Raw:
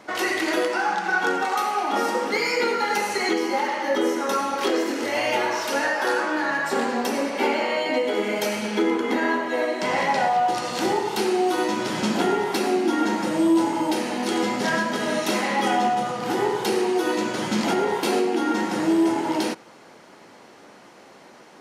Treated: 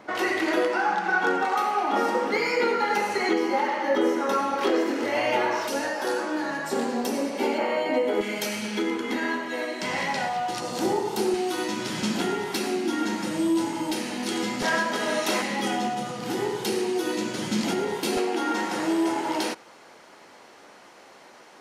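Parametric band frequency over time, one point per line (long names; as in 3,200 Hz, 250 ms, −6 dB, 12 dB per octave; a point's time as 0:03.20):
parametric band −8 dB 2.5 octaves
10,000 Hz
from 0:05.68 1,600 Hz
from 0:07.58 4,700 Hz
from 0:08.21 630 Hz
from 0:10.60 2,100 Hz
from 0:11.34 680 Hz
from 0:14.62 120 Hz
from 0:15.42 910 Hz
from 0:18.17 160 Hz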